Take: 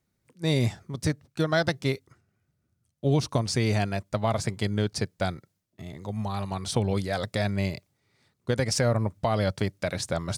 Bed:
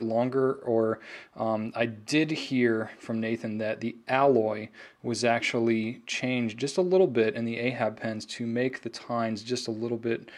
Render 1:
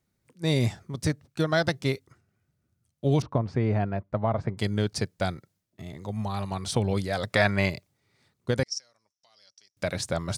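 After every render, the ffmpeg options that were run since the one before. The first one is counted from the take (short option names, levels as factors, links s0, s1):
-filter_complex "[0:a]asettb=1/sr,asplit=3[s0][s1][s2];[s0]atrim=end=3.224[s3];[s1]atrim=start=3.22:end=4.58,asetpts=PTS-STARTPTS,afade=t=in:d=0.004:c=qsin,afade=t=out:st=1.356:d=0.004:c=qsin,lowpass=1400[s4];[s2]atrim=start=4.576[s5];[s3][s4]acrossfade=d=0.004:c1=hsin:c2=qsin[s6];[s6][s5]acrossfade=d=0.004:c1=qsin:c2=hsin,asettb=1/sr,asplit=3[s7][s8][s9];[s7]atrim=end=7.304[s10];[s8]atrim=start=7.3:end=7.7,asetpts=PTS-STARTPTS,afade=t=in:d=0.004:c=qsin,afade=t=out:st=0.396:d=0.004:c=qsin,equalizer=f=1400:w=0.53:g=12[s11];[s9]atrim=start=7.696[s12];[s10][s11]acrossfade=d=0.004:c1=hsin:c2=qsin[s13];[s13][s12]acrossfade=d=0.004:c1=qsin:c2=hsin,asettb=1/sr,asplit=3[s14][s15][s16];[s14]atrim=end=8.634[s17];[s15]atrim=start=8.63:end=9.77,asetpts=PTS-STARTPTS,afade=t=in:d=0.004:c=qsin,afade=t=out:st=1.136:d=0.004:c=qsin,bandpass=f=5600:t=q:w=12[s18];[s16]atrim=start=9.766[s19];[s17][s18]acrossfade=d=0.004:c1=hsin:c2=qsin[s20];[s20][s19]acrossfade=d=0.004:c1=qsin:c2=hsin"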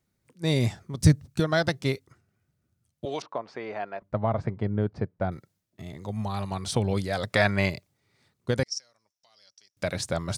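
-filter_complex "[0:a]asettb=1/sr,asplit=3[s0][s1][s2];[s0]atrim=end=1.004[s3];[s1]atrim=start=1:end=1.4,asetpts=PTS-STARTPTS,afade=t=in:d=0.004:c=qsin,afade=t=out:st=0.396:d=0.004:c=qsin,bass=f=250:g=12,treble=f=4000:g=6[s4];[s2]atrim=start=1.396[s5];[s3][s4]acrossfade=d=0.004:c1=hsin:c2=qsin[s6];[s6][s5]acrossfade=d=0.004:c1=qsin:c2=hsin,asettb=1/sr,asplit=3[s7][s8][s9];[s7]atrim=end=3.054[s10];[s8]atrim=start=3.05:end=4.02,asetpts=PTS-STARTPTS,afade=t=in:d=0.004:c=qsin,afade=t=out:st=0.966:d=0.004:c=qsin,highpass=570,lowpass=6700[s11];[s9]atrim=start=4.016[s12];[s10][s11]acrossfade=d=0.004:c1=hsin:c2=qsin[s13];[s13][s12]acrossfade=d=0.004:c1=qsin:c2=hsin,asettb=1/sr,asplit=3[s14][s15][s16];[s14]atrim=end=4.564[s17];[s15]atrim=start=4.56:end=5.32,asetpts=PTS-STARTPTS,afade=t=in:d=0.004:c=qsin,afade=t=out:st=0.756:d=0.004:c=qsin,lowpass=1200[s18];[s16]atrim=start=5.316[s19];[s17][s18]acrossfade=d=0.004:c1=hsin:c2=qsin[s20];[s20][s19]acrossfade=d=0.004:c1=qsin:c2=hsin"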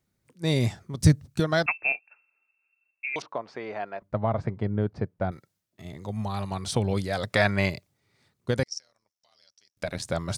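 -filter_complex "[0:a]asettb=1/sr,asplit=3[s0][s1][s2];[s0]atrim=end=1.664[s3];[s1]atrim=start=1.66:end=3.16,asetpts=PTS-STARTPTS,afade=t=in:d=0.004:c=qsin,afade=t=out:st=1.496:d=0.004:c=qsin,lowpass=f=2400:t=q:w=0.5098,lowpass=f=2400:t=q:w=0.6013,lowpass=f=2400:t=q:w=0.9,lowpass=f=2400:t=q:w=2.563,afreqshift=-2800[s4];[s2]atrim=start=3.156[s5];[s3][s4]acrossfade=d=0.004:c1=hsin:c2=qsin[s6];[s6][s5]acrossfade=d=0.004:c1=qsin:c2=hsin,asettb=1/sr,asplit=3[s7][s8][s9];[s7]atrim=end=5.314[s10];[s8]atrim=start=5.31:end=5.85,asetpts=PTS-STARTPTS,afade=t=in:d=0.004:c=qsin,afade=t=out:st=0.536:d=0.004:c=qsin,lowshelf=f=440:g=-6[s11];[s9]atrim=start=5.846[s12];[s10][s11]acrossfade=d=0.004:c1=hsin:c2=qsin[s13];[s13][s12]acrossfade=d=0.004:c1=qsin:c2=hsin,asplit=3[s14][s15][s16];[s14]afade=t=out:st=8.63:d=0.02[s17];[s15]tremolo=f=80:d=0.75,afade=t=in:st=8.63:d=0.02,afade=t=out:st=10.05:d=0.02[s18];[s16]afade=t=in:st=10.05:d=0.02[s19];[s17][s18][s19]amix=inputs=3:normalize=0"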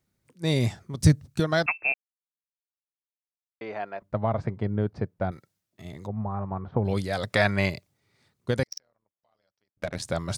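-filter_complex "[0:a]asplit=3[s0][s1][s2];[s0]afade=t=out:st=6.06:d=0.02[s3];[s1]lowpass=f=1400:w=0.5412,lowpass=f=1400:w=1.3066,afade=t=in:st=6.06:d=0.02,afade=t=out:st=6.84:d=0.02[s4];[s2]afade=t=in:st=6.84:d=0.02[s5];[s3][s4][s5]amix=inputs=3:normalize=0,asettb=1/sr,asplit=3[s6][s7][s8];[s6]atrim=end=8.674[s9];[s7]atrim=start=8.67:end=9.96,asetpts=PTS-STARTPTS,afade=t=in:d=0.004:c=qsin,afade=t=out:st=1.286:d=0.004:c=qsin,adynamicsmooth=sensitivity=5.5:basefreq=1200[s10];[s8]atrim=start=9.956[s11];[s9][s10]acrossfade=d=0.004:c1=hsin:c2=qsin[s12];[s12][s11]acrossfade=d=0.004:c1=qsin:c2=hsin,asplit=3[s13][s14][s15];[s13]atrim=end=1.94,asetpts=PTS-STARTPTS,afade=t=out:st=1.936:d=0.004:c=hsin[s16];[s14]atrim=start=1.94:end=3.61,asetpts=PTS-STARTPTS,volume=0[s17];[s15]atrim=start=3.61,asetpts=PTS-STARTPTS,afade=t=in:d=0.004:c=hsin[s18];[s16][s17][s18]concat=n=3:v=0:a=1"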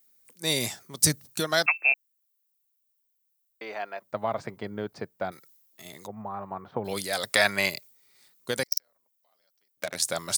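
-af "highpass=110,aemphasis=mode=production:type=riaa"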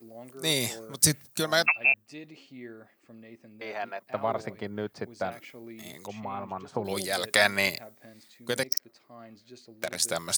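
-filter_complex "[1:a]volume=0.106[s0];[0:a][s0]amix=inputs=2:normalize=0"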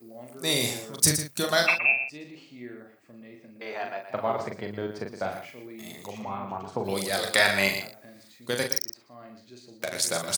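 -filter_complex "[0:a]asplit=2[s0][s1];[s1]adelay=41,volume=0.562[s2];[s0][s2]amix=inputs=2:normalize=0,aecho=1:1:117:0.335"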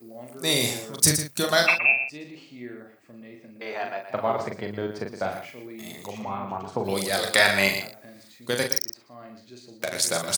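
-af "volume=1.33,alimiter=limit=0.708:level=0:latency=1"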